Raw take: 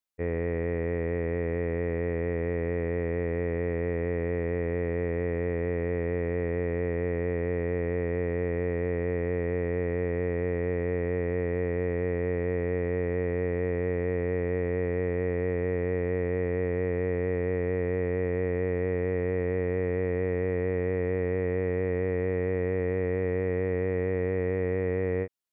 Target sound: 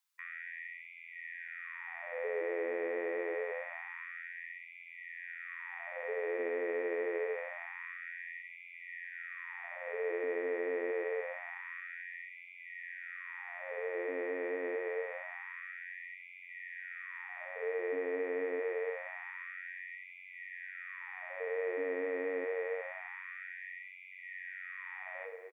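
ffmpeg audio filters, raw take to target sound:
-filter_complex "[0:a]asplit=2[a][b];[b]aecho=0:1:244:0.0944[c];[a][c]amix=inputs=2:normalize=0,alimiter=level_in=1.5dB:limit=-24dB:level=0:latency=1:release=34,volume=-1.5dB,asplit=2[d][e];[e]aecho=0:1:63|126|189|252|315|378:0.355|0.181|0.0923|0.0471|0.024|0.0122[f];[d][f]amix=inputs=2:normalize=0,asubboost=boost=11:cutoff=120,bandreject=f=370:w=12,afftfilt=real='re*gte(b*sr/1024,260*pow(2000/260,0.5+0.5*sin(2*PI*0.26*pts/sr)))':imag='im*gte(b*sr/1024,260*pow(2000/260,0.5+0.5*sin(2*PI*0.26*pts/sr)))':win_size=1024:overlap=0.75,volume=6dB"

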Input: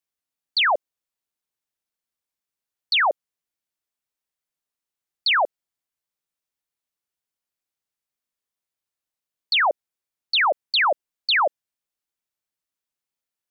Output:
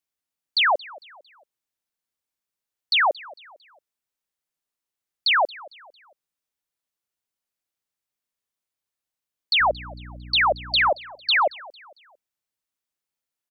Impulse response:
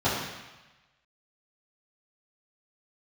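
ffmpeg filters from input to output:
-filter_complex "[0:a]asettb=1/sr,asplit=3[a][b][c];[a]atrim=end=9.604[d];[b]atrim=start=9.6:end=10.9,asetpts=PTS-STARTPTS,afade=t=in:d=0.004:c=qsin,afade=t=out:st=1.296:d=0.004:c=qsin,aeval=exprs='val(0)+0.0126*(sin(2*PI*60*n/s)+sin(2*PI*2*60*n/s)/2+sin(2*PI*3*60*n/s)/3+sin(2*PI*4*60*n/s)/4+sin(2*PI*5*60*n/s)/5)':c=same[e];[c]atrim=start=10.896[f];[d][e]acrossfade=d=0.004:c1=hsin:c2=qsin[g];[g][f]acrossfade=d=0.004:c1=qsin:c2=hsin,aecho=1:1:226|452|678:0.0841|0.0345|0.0141"

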